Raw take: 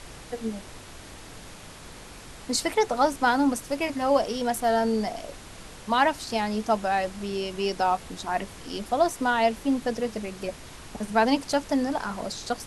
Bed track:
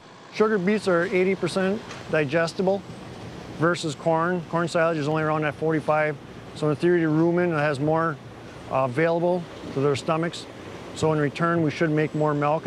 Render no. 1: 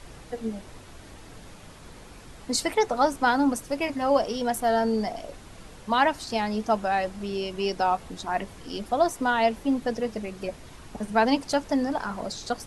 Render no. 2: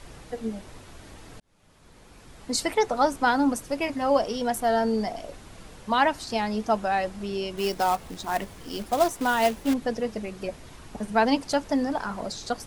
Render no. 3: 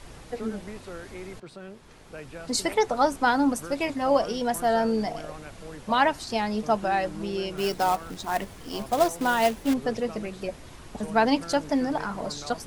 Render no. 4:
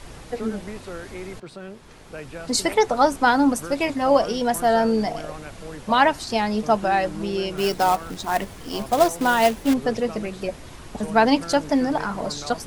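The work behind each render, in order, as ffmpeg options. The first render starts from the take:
-af "afftdn=nr=6:nf=-45"
-filter_complex "[0:a]asettb=1/sr,asplit=3[s0][s1][s2];[s0]atrim=end=7.574[s3];[s1]atrim=start=7.57:end=9.74,asetpts=PTS-STARTPTS,afade=t=in:d=0.004:c=qsin,afade=t=out:st=2.166:d=0.004:c=qsin,acrusher=bits=3:mode=log:mix=0:aa=0.000001[s4];[s2]atrim=start=9.736[s5];[s3][s4]acrossfade=d=0.004:c1=hsin:c2=qsin[s6];[s6][s5]acrossfade=d=0.004:c1=qsin:c2=hsin,asplit=2[s7][s8];[s7]atrim=end=1.4,asetpts=PTS-STARTPTS,afade=t=out:st=1.396:d=0.004:c=hsin[s9];[s8]atrim=start=1.4,asetpts=PTS-STARTPTS,afade=t=in:d=1.24[s10];[s9][s10]concat=n=2:v=0:a=1"
-filter_complex "[1:a]volume=0.112[s0];[0:a][s0]amix=inputs=2:normalize=0"
-af "volume=1.68"

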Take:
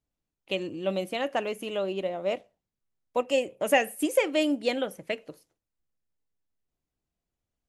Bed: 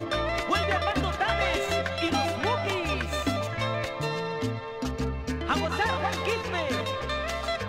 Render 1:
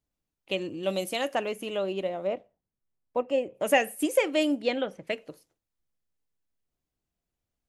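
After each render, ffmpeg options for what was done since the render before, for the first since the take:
-filter_complex "[0:a]asettb=1/sr,asplit=3[s0][s1][s2];[s0]atrim=end=0.834[s3];[s1]atrim=start=0.83:end=1.35,asetpts=PTS-STARTPTS,afade=t=in:d=0.004:c=qsin,afade=t=out:st=0.516:d=0.004:c=qsin,bass=f=250:g=-2,treble=f=4000:g=11[s4];[s2]atrim=start=1.346[s5];[s3][s4]acrossfade=d=0.004:c1=hsin:c2=qsin[s6];[s6][s5]acrossfade=d=0.004:c1=qsin:c2=hsin,asplit=3[s7][s8][s9];[s7]afade=t=out:st=2.26:d=0.02[s10];[s8]lowpass=f=1100:p=1,afade=t=in:st=2.26:d=0.02,afade=t=out:st=3.54:d=0.02[s11];[s9]afade=t=in:st=3.54:d=0.02[s12];[s10][s11][s12]amix=inputs=3:normalize=0,asettb=1/sr,asplit=3[s13][s14][s15];[s13]atrim=end=4.624[s16];[s14]atrim=start=4.62:end=5.07,asetpts=PTS-STARTPTS,afade=t=in:d=0.004:c=qsin,afade=t=out:st=0.446:d=0.004:c=qsin,lowpass=4600[s17];[s15]atrim=start=5.066[s18];[s16][s17]acrossfade=d=0.004:c1=hsin:c2=qsin[s19];[s19][s18]acrossfade=d=0.004:c1=qsin:c2=hsin"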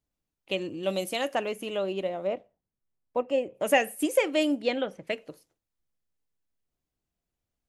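-af anull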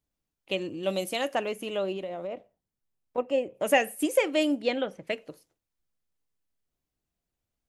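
-filter_complex "[0:a]asettb=1/sr,asplit=3[s0][s1][s2];[s0]atrim=end=1.964[s3];[s1]atrim=start=1.96:end=3.18,asetpts=PTS-STARTPTS,afade=t=in:d=0.004:c=qsin,afade=t=out:st=1.216:d=0.004:c=qsin,acompressor=threshold=0.0282:ratio=6:attack=3.2:release=140:knee=1:detection=peak[s4];[s2]atrim=start=3.176[s5];[s3][s4]acrossfade=d=0.004:c1=hsin:c2=qsin[s6];[s6][s5]acrossfade=d=0.004:c1=qsin:c2=hsin"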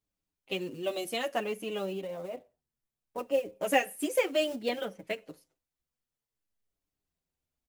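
-filter_complex "[0:a]acrusher=bits=6:mode=log:mix=0:aa=0.000001,asplit=2[s0][s1];[s1]adelay=6.9,afreqshift=-0.6[s2];[s0][s2]amix=inputs=2:normalize=1"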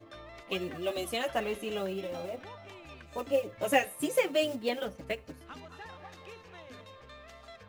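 -filter_complex "[1:a]volume=0.0944[s0];[0:a][s0]amix=inputs=2:normalize=0"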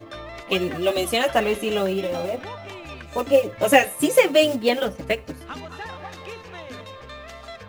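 -af "volume=3.76,alimiter=limit=0.794:level=0:latency=1"

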